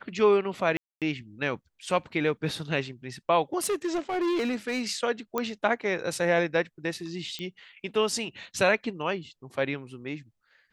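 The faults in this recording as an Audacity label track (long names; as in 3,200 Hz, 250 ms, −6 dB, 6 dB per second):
0.770000	1.020000	drop-out 247 ms
3.640000	4.860000	clipping −24 dBFS
5.380000	5.380000	click −14 dBFS
7.390000	7.390000	click −21 dBFS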